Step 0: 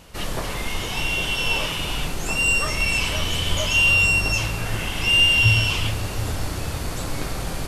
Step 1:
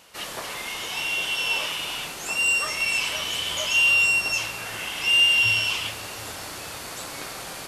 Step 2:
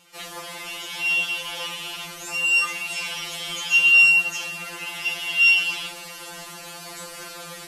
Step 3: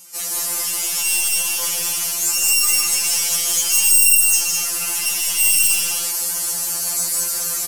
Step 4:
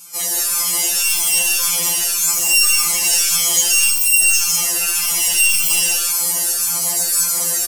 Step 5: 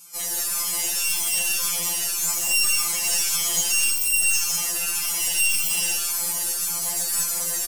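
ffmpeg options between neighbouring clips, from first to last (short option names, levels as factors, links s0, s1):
-af "highpass=f=830:p=1,volume=0.891"
-af "afftfilt=real='re*2.83*eq(mod(b,8),0)':imag='im*2.83*eq(mod(b,8),0)':win_size=2048:overlap=0.75"
-filter_complex "[0:a]aeval=exprs='(tanh(20*val(0)+0.4)-tanh(0.4))/20':c=same,aexciter=amount=9.5:drive=2.5:freq=5000,asplit=2[s0][s1];[s1]aecho=0:1:154.5|207:0.708|0.631[s2];[s0][s2]amix=inputs=2:normalize=0,volume=1.19"
-filter_complex "[0:a]acrossover=split=5700[s0][s1];[s1]alimiter=limit=0.237:level=0:latency=1[s2];[s0][s2]amix=inputs=2:normalize=0,asplit=2[s3][s4];[s4]adelay=4.6,afreqshift=1.8[s5];[s3][s5]amix=inputs=2:normalize=1,volume=2.24"
-af "aeval=exprs='(tanh(2.24*val(0)+0.5)-tanh(0.5))/2.24':c=same,volume=0.562"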